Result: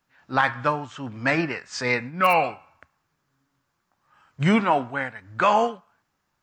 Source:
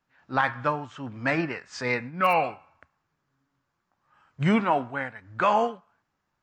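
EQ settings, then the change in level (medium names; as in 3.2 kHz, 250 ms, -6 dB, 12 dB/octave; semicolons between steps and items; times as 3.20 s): treble shelf 3.8 kHz +6.5 dB; +2.5 dB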